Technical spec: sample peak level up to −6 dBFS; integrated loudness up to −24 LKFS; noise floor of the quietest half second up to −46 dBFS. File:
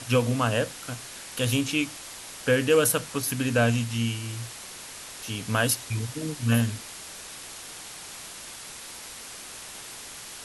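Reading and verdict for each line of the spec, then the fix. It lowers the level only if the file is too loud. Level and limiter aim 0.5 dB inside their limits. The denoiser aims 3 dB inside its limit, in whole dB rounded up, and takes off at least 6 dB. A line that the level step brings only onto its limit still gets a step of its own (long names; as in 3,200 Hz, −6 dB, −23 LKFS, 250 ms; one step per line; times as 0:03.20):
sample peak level −9.0 dBFS: in spec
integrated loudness −26.5 LKFS: in spec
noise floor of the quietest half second −42 dBFS: out of spec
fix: broadband denoise 7 dB, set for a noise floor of −42 dBFS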